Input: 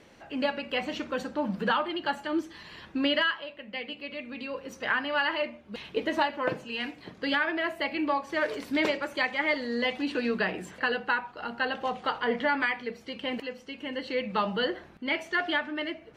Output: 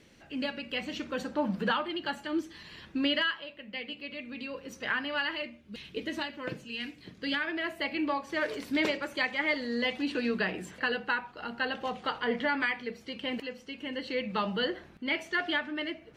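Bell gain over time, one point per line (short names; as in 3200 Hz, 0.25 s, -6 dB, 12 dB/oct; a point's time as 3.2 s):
bell 830 Hz 1.9 oct
0.89 s -10.5 dB
1.39 s +0.5 dB
1.89 s -6.5 dB
5.13 s -6.5 dB
5.53 s -14.5 dB
6.97 s -14.5 dB
7.91 s -4.5 dB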